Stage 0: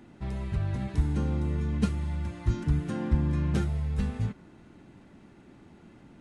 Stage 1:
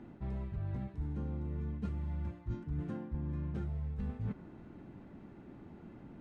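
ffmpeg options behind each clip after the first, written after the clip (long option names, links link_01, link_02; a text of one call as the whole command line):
ffmpeg -i in.wav -af "lowpass=frequency=1100:poles=1,areverse,acompressor=threshold=-36dB:ratio=10,areverse,volume=1.5dB" out.wav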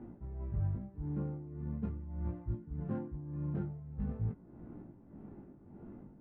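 ffmpeg -i in.wav -af "tremolo=f=1.7:d=0.68,flanger=delay=17:depth=3.7:speed=0.43,adynamicsmooth=sensitivity=5.5:basefreq=1100,volume=6.5dB" out.wav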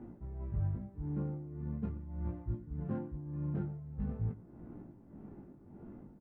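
ffmpeg -i in.wav -af "aecho=1:1:116:0.112" out.wav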